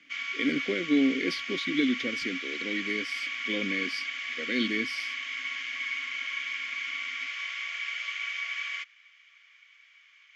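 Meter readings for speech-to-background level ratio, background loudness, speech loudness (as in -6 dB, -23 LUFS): 1.5 dB, -32.5 LUFS, -31.0 LUFS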